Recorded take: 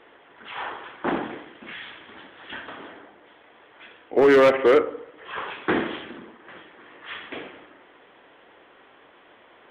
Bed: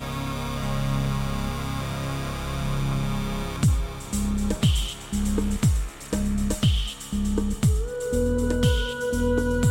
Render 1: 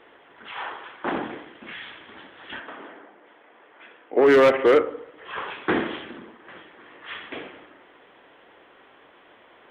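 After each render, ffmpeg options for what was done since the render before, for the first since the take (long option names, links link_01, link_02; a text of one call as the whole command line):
ffmpeg -i in.wav -filter_complex "[0:a]asettb=1/sr,asplit=3[link_01][link_02][link_03];[link_01]atrim=end=0.514[link_04];[link_02]atrim=start=0.51:end=1.15,asetpts=PTS-STARTPTS,afade=type=in:duration=0.004:curve=qsin,afade=type=out:start_time=0.636:duration=0.004:curve=qsin,lowshelf=frequency=380:gain=-6[link_05];[link_03]atrim=start=1.146[link_06];[link_04][link_05]acrossfade=duration=0.004:curve1=hsin:curve2=qsin[link_07];[link_07][link_06]acrossfade=duration=0.004:curve1=qsin:curve2=hsin,asplit=3[link_08][link_09][link_10];[link_08]afade=type=out:start_time=2.59:duration=0.02[link_11];[link_09]highpass=200,lowpass=2700,afade=type=in:start_time=2.59:duration=0.02,afade=type=out:start_time=4.25:duration=0.02[link_12];[link_10]afade=type=in:start_time=4.25:duration=0.02[link_13];[link_11][link_12][link_13]amix=inputs=3:normalize=0" out.wav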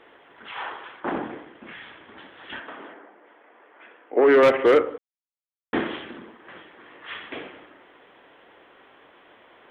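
ffmpeg -i in.wav -filter_complex "[0:a]asettb=1/sr,asplit=3[link_01][link_02][link_03];[link_01]atrim=end=1.004[link_04];[link_02]atrim=start=1:end=2.18,asetpts=PTS-STARTPTS,afade=type=in:duration=0.004:curve=qsin,afade=type=out:start_time=1.176:duration=0.004:curve=qsin,highshelf=frequency=2900:gain=-11[link_05];[link_03]atrim=start=2.176[link_06];[link_04][link_05]acrossfade=duration=0.004:curve1=hsin:curve2=qsin[link_07];[link_07][link_06]acrossfade=duration=0.004:curve1=qsin:curve2=hsin,asettb=1/sr,asplit=3[link_08][link_09][link_10];[link_08]atrim=end=2.944[link_11];[link_09]atrim=start=2.94:end=4.43,asetpts=PTS-STARTPTS,afade=type=in:duration=0.004:curve=qsin,afade=type=out:start_time=1.486:duration=0.004:curve=qsin,highpass=210,lowpass=2600[link_12];[link_10]atrim=start=4.426[link_13];[link_11][link_12]acrossfade=duration=0.004:curve1=hsin:curve2=qsin[link_14];[link_14][link_13]acrossfade=duration=0.004:curve1=qsin:curve2=hsin,asplit=3[link_15][link_16][link_17];[link_15]atrim=end=4.98,asetpts=PTS-STARTPTS,afade=type=out:start_time=4.976:duration=0.004:curve=hsin[link_18];[link_16]atrim=start=4.98:end=5.73,asetpts=PTS-STARTPTS,volume=0[link_19];[link_17]atrim=start=5.73,asetpts=PTS-STARTPTS,afade=type=in:duration=0.004:curve=hsin[link_20];[link_18][link_19][link_20]concat=n=3:v=0:a=1" out.wav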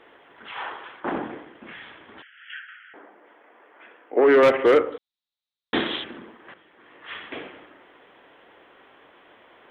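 ffmpeg -i in.wav -filter_complex "[0:a]asettb=1/sr,asplit=3[link_01][link_02][link_03];[link_01]atrim=end=2.224[link_04];[link_02]atrim=start=2.22:end=2.94,asetpts=PTS-STARTPTS,afade=type=in:duration=0.004:curve=qsin,afade=type=out:start_time=0.716:duration=0.004:curve=qsin,asuperpass=centerf=2100:order=20:qfactor=1.1[link_05];[link_03]atrim=start=2.936[link_06];[link_04][link_05]acrossfade=duration=0.004:curve1=hsin:curve2=qsin[link_07];[link_07][link_06]acrossfade=duration=0.004:curve1=qsin:curve2=hsin,asettb=1/sr,asplit=3[link_08][link_09][link_10];[link_08]atrim=end=4.924[link_11];[link_09]atrim=start=4.92:end=6.04,asetpts=PTS-STARTPTS,afade=type=in:duration=0.004:curve=qsin,afade=type=out:start_time=1.116:duration=0.004:curve=qsin,lowpass=frequency=3800:width_type=q:width=7.7[link_12];[link_10]atrim=start=6.036[link_13];[link_11][link_12]acrossfade=duration=0.004:curve1=hsin:curve2=qsin[link_14];[link_14][link_13]acrossfade=duration=0.004:curve1=qsin:curve2=hsin,asplit=2[link_15][link_16];[link_15]atrim=end=6.54,asetpts=PTS-STARTPTS,afade=type=out:start_time=6.536:duration=0.004:curve=hsin:silence=0.237137[link_17];[link_16]atrim=start=6.54,asetpts=PTS-STARTPTS,afade=type=in:duration=0.65:silence=0.237137[link_18];[link_17][link_18]concat=n=2:v=0:a=1" out.wav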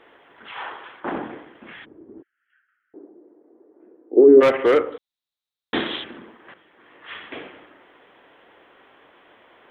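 ffmpeg -i in.wav -filter_complex "[0:a]asplit=3[link_01][link_02][link_03];[link_01]afade=type=out:start_time=1.84:duration=0.02[link_04];[link_02]lowpass=frequency=350:width_type=q:width=3.8,afade=type=in:start_time=1.84:duration=0.02,afade=type=out:start_time=4.4:duration=0.02[link_05];[link_03]afade=type=in:start_time=4.4:duration=0.02[link_06];[link_04][link_05][link_06]amix=inputs=3:normalize=0" out.wav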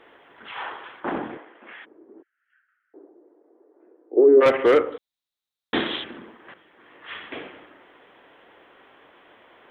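ffmpeg -i in.wav -filter_complex "[0:a]asettb=1/sr,asplit=3[link_01][link_02][link_03];[link_01]atrim=end=1.374[link_04];[link_02]atrim=start=1.37:end=4.46,asetpts=PTS-STARTPTS,afade=type=in:duration=0.004:curve=qsin,afade=type=out:start_time=3.086:duration=0.004:curve=qsin,highpass=410,lowpass=2800[link_05];[link_03]atrim=start=4.456[link_06];[link_04][link_05]acrossfade=duration=0.004:curve1=hsin:curve2=qsin[link_07];[link_07][link_06]acrossfade=duration=0.004:curve1=qsin:curve2=hsin" out.wav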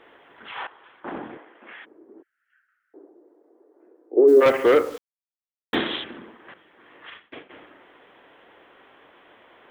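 ffmpeg -i in.wav -filter_complex "[0:a]asplit=3[link_01][link_02][link_03];[link_01]afade=type=out:start_time=4.27:duration=0.02[link_04];[link_02]acrusher=bits=8:dc=4:mix=0:aa=0.000001,afade=type=in:start_time=4.27:duration=0.02,afade=type=out:start_time=5.74:duration=0.02[link_05];[link_03]afade=type=in:start_time=5.74:duration=0.02[link_06];[link_04][link_05][link_06]amix=inputs=3:normalize=0,asplit=3[link_07][link_08][link_09];[link_07]afade=type=out:start_time=7.09:duration=0.02[link_10];[link_08]agate=range=-33dB:threshold=-30dB:ratio=3:release=100:detection=peak,afade=type=in:start_time=7.09:duration=0.02,afade=type=out:start_time=7.49:duration=0.02[link_11];[link_09]afade=type=in:start_time=7.49:duration=0.02[link_12];[link_10][link_11][link_12]amix=inputs=3:normalize=0,asplit=2[link_13][link_14];[link_13]atrim=end=0.67,asetpts=PTS-STARTPTS,afade=type=out:start_time=0.666:duration=0.004:curve=hsin:silence=0.141254[link_15];[link_14]atrim=start=0.67,asetpts=PTS-STARTPTS,afade=type=in:duration=1.05:silence=0.141254[link_16];[link_15][link_16]concat=n=2:v=0:a=1" out.wav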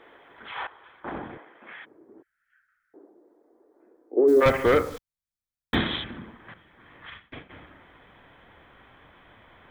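ffmpeg -i in.wav -af "bandreject=frequency=2800:width=9.3,asubboost=boost=10:cutoff=120" out.wav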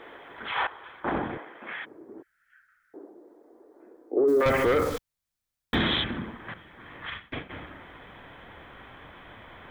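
ffmpeg -i in.wav -af "acontrast=62,alimiter=limit=-16dB:level=0:latency=1:release=13" out.wav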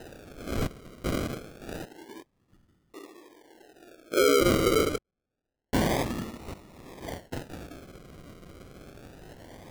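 ffmpeg -i in.wav -af "acrusher=samples=39:mix=1:aa=0.000001:lfo=1:lforange=23.4:lforate=0.27" out.wav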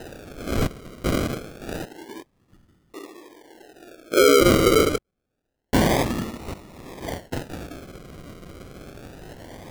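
ffmpeg -i in.wav -af "volume=6.5dB" out.wav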